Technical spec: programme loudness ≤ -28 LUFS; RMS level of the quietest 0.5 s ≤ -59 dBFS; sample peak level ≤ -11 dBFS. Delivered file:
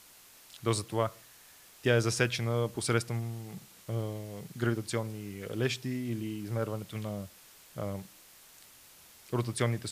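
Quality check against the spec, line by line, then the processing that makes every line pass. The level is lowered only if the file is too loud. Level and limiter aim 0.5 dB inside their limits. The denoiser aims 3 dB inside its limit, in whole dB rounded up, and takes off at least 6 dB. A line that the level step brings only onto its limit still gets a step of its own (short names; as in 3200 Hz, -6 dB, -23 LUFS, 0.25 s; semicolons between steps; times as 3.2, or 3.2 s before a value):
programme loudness -33.5 LUFS: OK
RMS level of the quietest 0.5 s -56 dBFS: fail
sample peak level -13.0 dBFS: OK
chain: denoiser 6 dB, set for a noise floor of -56 dBFS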